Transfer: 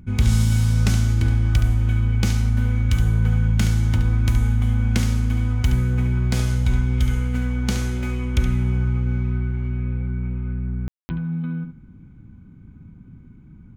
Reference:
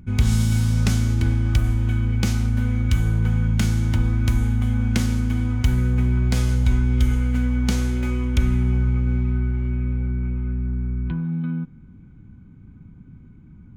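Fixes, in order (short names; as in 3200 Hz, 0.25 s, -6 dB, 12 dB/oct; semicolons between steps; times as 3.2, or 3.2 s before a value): clip repair -8.5 dBFS; room tone fill 10.88–11.09; inverse comb 71 ms -9 dB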